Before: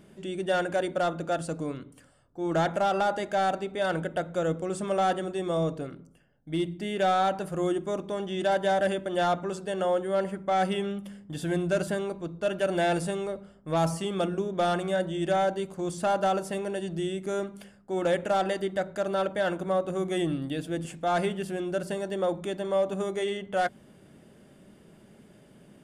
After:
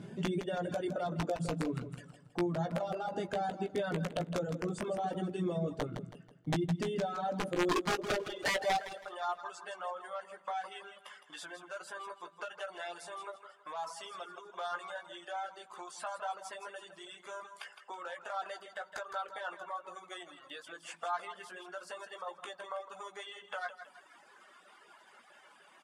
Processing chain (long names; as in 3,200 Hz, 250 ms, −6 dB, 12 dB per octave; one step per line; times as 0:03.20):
spectral magnitudes quantised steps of 15 dB
dynamic equaliser 2,100 Hz, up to −5 dB, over −45 dBFS, Q 0.98
brickwall limiter −23.5 dBFS, peak gain reduction 6.5 dB
downward compressor 10 to 1, threshold −38 dBFS, peak gain reduction 12 dB
high-pass filter sweep 120 Hz → 1,100 Hz, 0:06.68–0:09.17
wrap-around overflow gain 30 dB
high-frequency loss of the air 57 metres
double-tracking delay 17 ms −6 dB
repeating echo 162 ms, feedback 45%, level −7 dB
reverb reduction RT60 1.1 s
level +5 dB